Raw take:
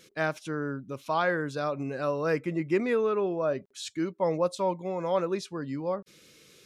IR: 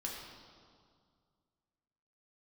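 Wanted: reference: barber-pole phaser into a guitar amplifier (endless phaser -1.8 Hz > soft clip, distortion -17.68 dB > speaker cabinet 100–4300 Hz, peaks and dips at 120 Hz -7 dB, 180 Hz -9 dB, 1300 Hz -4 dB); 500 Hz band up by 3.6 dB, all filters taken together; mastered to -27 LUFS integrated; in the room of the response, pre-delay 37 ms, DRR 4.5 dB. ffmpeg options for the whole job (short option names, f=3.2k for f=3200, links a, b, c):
-filter_complex "[0:a]equalizer=f=500:t=o:g=4.5,asplit=2[a][b];[1:a]atrim=start_sample=2205,adelay=37[c];[b][c]afir=irnorm=-1:irlink=0,volume=-5dB[d];[a][d]amix=inputs=2:normalize=0,asplit=2[e][f];[f]afreqshift=-1.8[g];[e][g]amix=inputs=2:normalize=1,asoftclip=threshold=-19dB,highpass=100,equalizer=f=120:t=q:w=4:g=-7,equalizer=f=180:t=q:w=4:g=-9,equalizer=f=1.3k:t=q:w=4:g=-4,lowpass=f=4.3k:w=0.5412,lowpass=f=4.3k:w=1.3066,volume=4dB"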